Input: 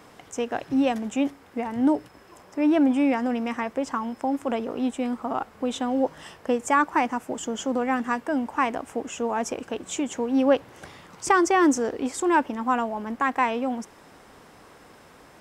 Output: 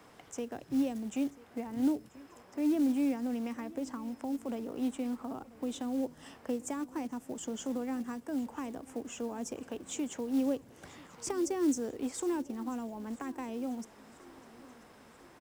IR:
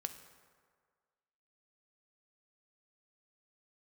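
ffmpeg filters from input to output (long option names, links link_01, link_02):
-filter_complex "[0:a]acrossover=split=130|430|5000[link_01][link_02][link_03][link_04];[link_03]acompressor=threshold=-38dB:ratio=8[link_05];[link_01][link_02][link_05][link_04]amix=inputs=4:normalize=0,acrusher=bits=6:mode=log:mix=0:aa=0.000001,aecho=1:1:988|1976|2964|3952:0.0944|0.05|0.0265|0.0141,volume=-7dB"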